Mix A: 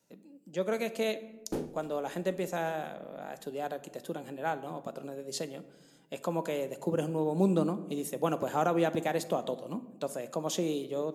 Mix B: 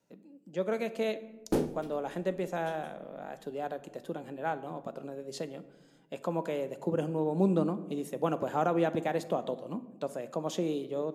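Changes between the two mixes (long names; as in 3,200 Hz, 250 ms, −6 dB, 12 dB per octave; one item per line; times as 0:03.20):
speech: add high-shelf EQ 4,200 Hz −10.5 dB
background +6.5 dB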